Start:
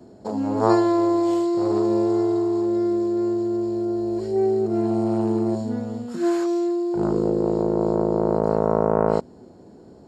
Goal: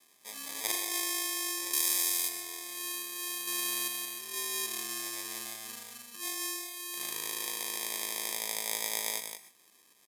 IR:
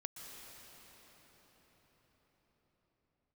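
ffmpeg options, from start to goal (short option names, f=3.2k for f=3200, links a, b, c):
-filter_complex "[0:a]asettb=1/sr,asplit=3[a][b][c];[a]atrim=end=3.474[d];[b]atrim=start=3.47:end=3.88,asetpts=PTS-STARTPTS,afade=t=in:d=0.004:c=qsin,afade=t=out:st=0.406:d=0.004:c=qsin,acontrast=74[e];[c]atrim=start=3.876[f];[d][e]acrossfade=d=0.004:c1=hsin:c2=qsin[g];[g][f]acrossfade=d=0.004:c1=qsin:c2=hsin,aecho=1:1:175:0.422,acrusher=samples=31:mix=1:aa=0.000001,asettb=1/sr,asplit=3[h][i][j];[h]atrim=end=1.734[k];[i]atrim=start=1.73:end=2.29,asetpts=PTS-STARTPTS,afade=t=in:d=0.004:c=qsin,afade=t=out:st=0.556:d=0.004:c=qsin,highshelf=f=3.2k:g=10.5[l];[j]atrim=start=2.286[m];[k][l]acrossfade=d=0.004:c1=hsin:c2=qsin[n];[n][m]acrossfade=d=0.004:c1=qsin:c2=hsin,aresample=32000,aresample=44100,aderivative[o];[1:a]atrim=start_sample=2205,atrim=end_sample=6174[p];[o][p]afir=irnorm=-1:irlink=0,volume=1.5dB"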